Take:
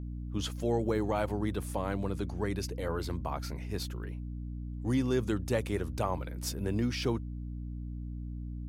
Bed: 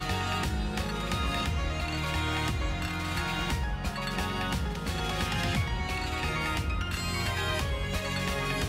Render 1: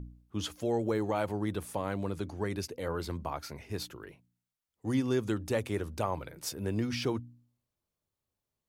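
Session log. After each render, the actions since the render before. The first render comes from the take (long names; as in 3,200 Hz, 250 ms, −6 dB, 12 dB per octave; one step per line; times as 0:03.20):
hum removal 60 Hz, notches 5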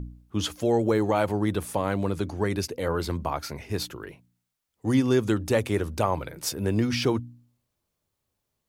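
level +7.5 dB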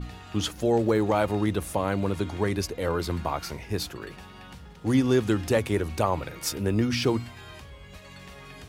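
mix in bed −14.5 dB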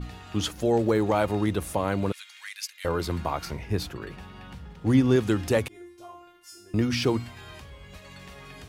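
0:02.12–0:02.85: inverse Chebyshev high-pass filter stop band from 310 Hz, stop band 80 dB
0:03.45–0:05.16: bass and treble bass +4 dB, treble −5 dB
0:05.68–0:06.74: tuned comb filter 350 Hz, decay 0.59 s, mix 100%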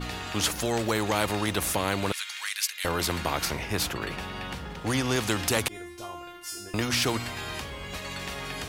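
every bin compressed towards the loudest bin 2 to 1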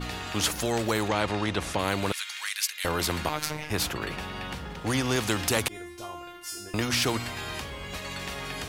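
0:01.08–0:01.79: high-frequency loss of the air 81 metres
0:03.29–0:03.70: phases set to zero 152 Hz
0:05.00–0:05.73: log-companded quantiser 8 bits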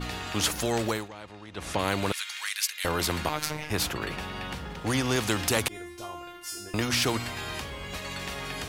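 0:00.86–0:01.74: duck −17 dB, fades 0.22 s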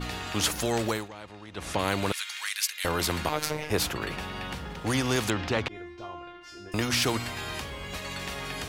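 0:03.32–0:03.79: parametric band 480 Hz +7.5 dB 0.79 octaves
0:05.30–0:06.72: high-frequency loss of the air 210 metres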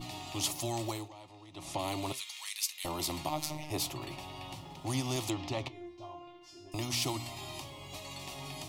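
phaser with its sweep stopped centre 310 Hz, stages 8
flanger 0.57 Hz, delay 5.7 ms, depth 4.3 ms, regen +79%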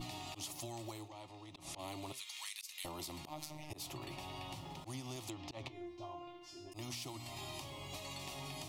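volume swells 168 ms
downward compressor 10 to 1, threshold −42 dBFS, peak gain reduction 13.5 dB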